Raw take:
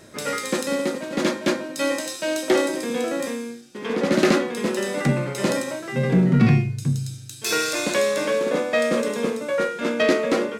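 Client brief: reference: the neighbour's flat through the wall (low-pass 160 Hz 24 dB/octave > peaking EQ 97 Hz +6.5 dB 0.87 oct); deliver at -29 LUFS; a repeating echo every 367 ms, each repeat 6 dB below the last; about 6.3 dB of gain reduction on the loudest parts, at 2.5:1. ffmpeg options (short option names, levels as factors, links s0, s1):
-af "acompressor=threshold=0.0794:ratio=2.5,lowpass=f=160:w=0.5412,lowpass=f=160:w=1.3066,equalizer=f=97:t=o:w=0.87:g=6.5,aecho=1:1:367|734|1101|1468|1835|2202:0.501|0.251|0.125|0.0626|0.0313|0.0157,volume=1.19"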